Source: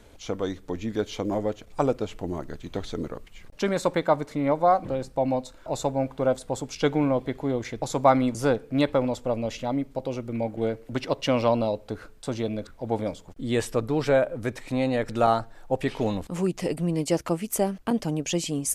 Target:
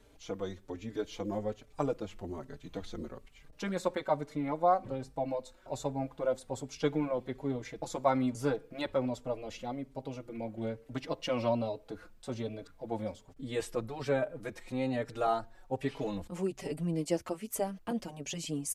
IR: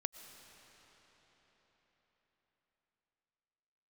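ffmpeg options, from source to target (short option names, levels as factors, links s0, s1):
-filter_complex "[0:a]asplit=2[s0][s1];[s1]adelay=4.7,afreqshift=1.2[s2];[s0][s2]amix=inputs=2:normalize=1,volume=0.501"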